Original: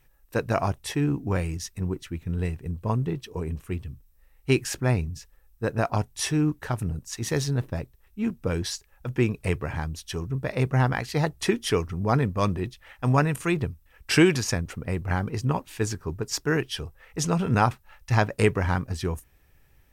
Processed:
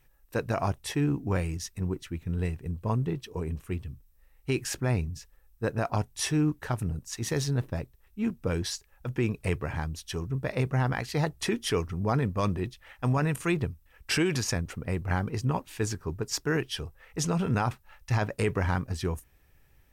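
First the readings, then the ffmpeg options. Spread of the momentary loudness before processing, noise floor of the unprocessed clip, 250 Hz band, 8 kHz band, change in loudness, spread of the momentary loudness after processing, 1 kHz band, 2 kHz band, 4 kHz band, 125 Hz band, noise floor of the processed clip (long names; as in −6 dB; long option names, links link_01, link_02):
10 LU, −60 dBFS, −3.5 dB, −2.0 dB, −3.5 dB, 8 LU, −4.5 dB, −4.0 dB, −2.5 dB, −3.0 dB, −62 dBFS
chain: -af "alimiter=limit=-15dB:level=0:latency=1:release=28,volume=-2dB"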